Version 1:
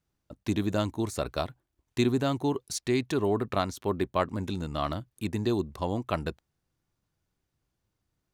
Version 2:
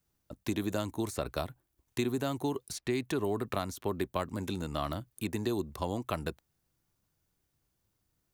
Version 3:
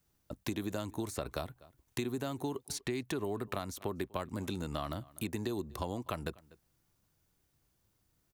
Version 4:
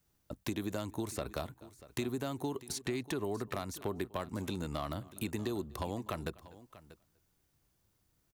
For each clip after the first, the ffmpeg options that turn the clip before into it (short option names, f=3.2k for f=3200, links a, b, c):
-filter_complex "[0:a]highshelf=f=8.8k:g=12,acrossover=split=270|3300|6900[a][b][c][d];[a]acompressor=threshold=-37dB:ratio=4[e];[b]acompressor=threshold=-31dB:ratio=4[f];[c]acompressor=threshold=-51dB:ratio=4[g];[d]acompressor=threshold=-47dB:ratio=4[h];[e][f][g][h]amix=inputs=4:normalize=0"
-filter_complex "[0:a]asplit=2[a][b];[b]adelay=244.9,volume=-27dB,highshelf=f=4k:g=-5.51[c];[a][c]amix=inputs=2:normalize=0,acompressor=threshold=-39dB:ratio=2.5,volume=3dB"
-af "volume=26dB,asoftclip=hard,volume=-26dB,aecho=1:1:639:0.133"